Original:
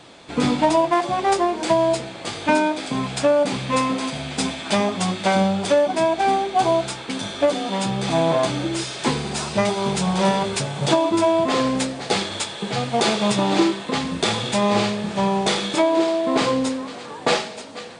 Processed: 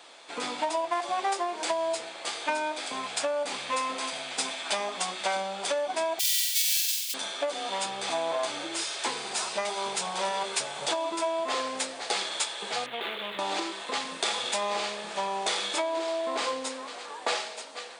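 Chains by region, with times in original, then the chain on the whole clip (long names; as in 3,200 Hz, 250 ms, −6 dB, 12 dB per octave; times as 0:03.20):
0:06.19–0:07.14: each half-wave held at its own peak + inverse Chebyshev high-pass filter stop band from 530 Hz, stop band 80 dB + flutter between parallel walls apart 8 metres, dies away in 0.91 s
0:12.86–0:13.39: running median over 15 samples + drawn EQ curve 440 Hz 0 dB, 750 Hz −7 dB, 3,500 Hz +13 dB, 5,300 Hz −23 dB, 10,000 Hz −12 dB + downward compressor 3 to 1, threshold −24 dBFS
whole clip: downward compressor, threshold −19 dBFS; high-pass filter 600 Hz 12 dB per octave; high-shelf EQ 9,200 Hz +6 dB; level −3.5 dB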